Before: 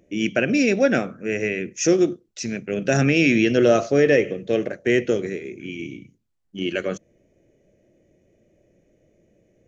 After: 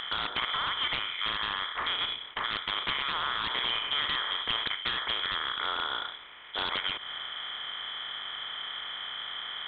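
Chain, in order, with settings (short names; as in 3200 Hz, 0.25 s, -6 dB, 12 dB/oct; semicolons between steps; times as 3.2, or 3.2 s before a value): per-bin compression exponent 0.4; HPF 1300 Hz 6 dB/oct; low-pass opened by the level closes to 2800 Hz, open at -16.5 dBFS; compressor 5:1, threshold -27 dBFS, peak gain reduction 11.5 dB; wrapped overs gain 18.5 dB; inverted band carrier 3700 Hz; Doppler distortion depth 0.23 ms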